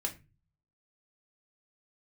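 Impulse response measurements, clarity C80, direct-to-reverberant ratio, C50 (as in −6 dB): 21.0 dB, 1.5 dB, 14.5 dB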